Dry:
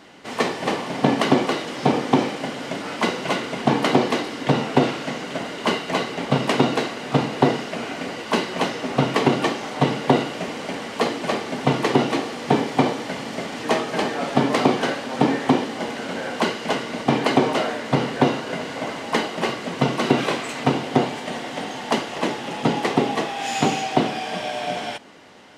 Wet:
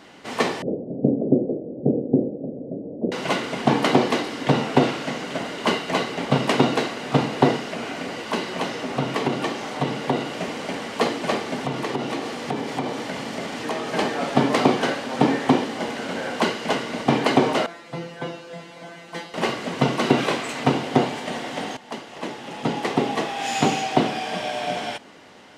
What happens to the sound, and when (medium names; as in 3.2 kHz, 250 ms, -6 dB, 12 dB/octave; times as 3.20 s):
0.62–3.12 s: steep low-pass 570 Hz 48 dB/octave
7.57–10.37 s: compression 1.5:1, threshold -27 dBFS
11.56–13.91 s: compression 3:1, threshold -24 dBFS
17.66–19.34 s: feedback comb 170 Hz, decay 0.23 s, mix 100%
21.77–23.41 s: fade in, from -15.5 dB